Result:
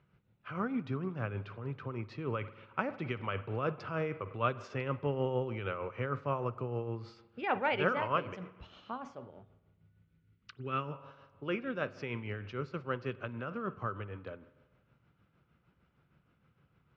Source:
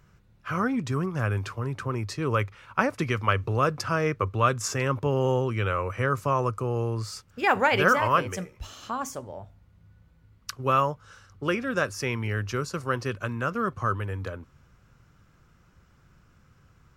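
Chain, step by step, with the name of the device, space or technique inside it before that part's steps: combo amplifier with spring reverb and tremolo (spring tank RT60 1.3 s, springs 49 ms, chirp 45 ms, DRR 14.5 dB; tremolo 6.5 Hz, depth 50%; speaker cabinet 85–3500 Hz, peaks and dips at 91 Hz -6 dB, 1100 Hz -4 dB, 1700 Hz -5 dB); 9.3–10.92 band shelf 750 Hz -9 dB 1.3 oct; gain -6 dB

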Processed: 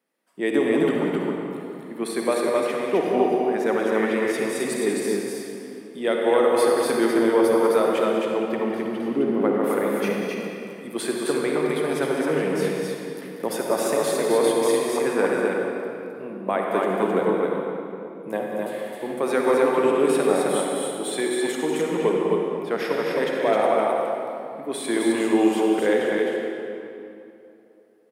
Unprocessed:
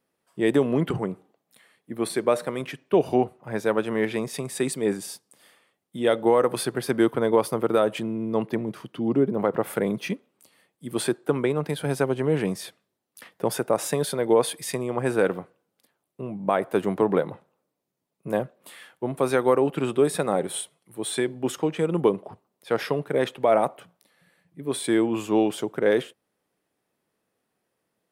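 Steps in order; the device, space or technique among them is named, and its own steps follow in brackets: stadium PA (HPF 190 Hz 24 dB/oct; bell 2000 Hz +4 dB 0.52 oct; loudspeakers at several distances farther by 66 m -10 dB, 90 m -3 dB; reverb RT60 2.8 s, pre-delay 49 ms, DRR 0 dB); gain -2.5 dB

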